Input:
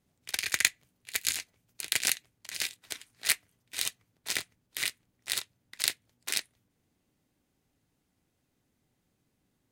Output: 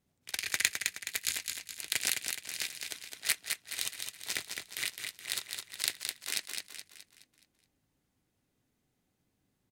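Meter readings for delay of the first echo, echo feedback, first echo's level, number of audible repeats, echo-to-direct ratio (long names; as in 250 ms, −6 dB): 211 ms, 45%, −5.0 dB, 5, −4.0 dB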